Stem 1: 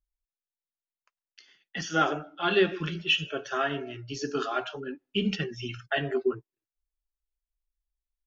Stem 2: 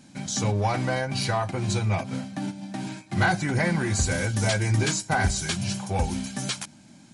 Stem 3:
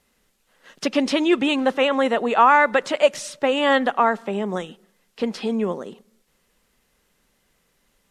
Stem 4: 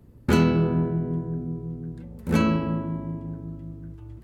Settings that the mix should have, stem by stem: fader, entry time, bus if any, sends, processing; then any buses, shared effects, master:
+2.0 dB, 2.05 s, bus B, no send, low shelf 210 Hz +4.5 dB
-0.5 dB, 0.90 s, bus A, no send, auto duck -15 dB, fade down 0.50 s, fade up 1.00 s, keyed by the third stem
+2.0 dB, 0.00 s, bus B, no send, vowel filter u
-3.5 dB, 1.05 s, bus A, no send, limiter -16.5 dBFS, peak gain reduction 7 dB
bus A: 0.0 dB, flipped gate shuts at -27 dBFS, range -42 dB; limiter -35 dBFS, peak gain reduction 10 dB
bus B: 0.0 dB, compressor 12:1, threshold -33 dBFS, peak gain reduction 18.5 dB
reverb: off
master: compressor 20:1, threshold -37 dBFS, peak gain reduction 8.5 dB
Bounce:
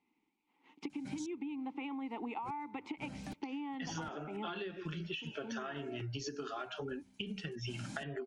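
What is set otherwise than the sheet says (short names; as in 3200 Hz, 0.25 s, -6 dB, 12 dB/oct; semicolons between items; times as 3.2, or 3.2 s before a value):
stem 2 -0.5 dB -> +6.0 dB; stem 4 -3.5 dB -> -10.5 dB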